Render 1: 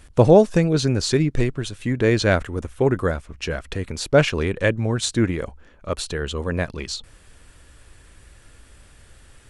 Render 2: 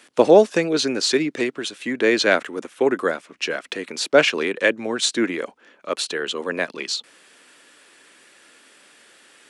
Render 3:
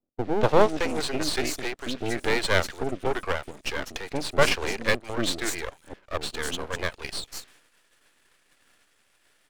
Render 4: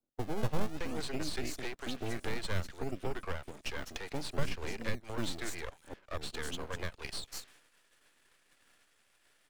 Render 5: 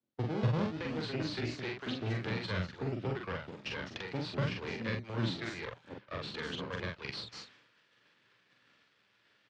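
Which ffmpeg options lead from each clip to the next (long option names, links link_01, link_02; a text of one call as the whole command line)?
ffmpeg -i in.wav -filter_complex "[0:a]highpass=frequency=250:width=0.5412,highpass=frequency=250:width=1.3066,highshelf=frequency=6500:gain=-9.5,acrossover=split=440|1700[link_01][link_02][link_03];[link_03]acontrast=70[link_04];[link_01][link_02][link_04]amix=inputs=3:normalize=0,volume=1dB" out.wav
ffmpeg -i in.wav -filter_complex "[0:a]acrossover=split=370|5500[link_01][link_02][link_03];[link_02]adelay=240[link_04];[link_03]adelay=440[link_05];[link_01][link_04][link_05]amix=inputs=3:normalize=0,aeval=exprs='max(val(0),0)':channel_layout=same,agate=range=-14dB:threshold=-53dB:ratio=16:detection=peak" out.wav
ffmpeg -i in.wav -filter_complex "[0:a]acrossover=split=240[link_01][link_02];[link_01]acrusher=samples=33:mix=1:aa=0.000001:lfo=1:lforange=33:lforate=0.58[link_03];[link_02]acompressor=threshold=-33dB:ratio=6[link_04];[link_03][link_04]amix=inputs=2:normalize=0,volume=-4.5dB" out.wav
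ffmpeg -i in.wav -filter_complex "[0:a]highpass=110,equalizer=frequency=120:width_type=q:width=4:gain=10,equalizer=frequency=190:width_type=q:width=4:gain=5,equalizer=frequency=720:width_type=q:width=4:gain=-5,lowpass=frequency=4800:width=0.5412,lowpass=frequency=4800:width=1.3066,asplit=2[link_01][link_02];[link_02]adelay=44,volume=-2.5dB[link_03];[link_01][link_03]amix=inputs=2:normalize=0" out.wav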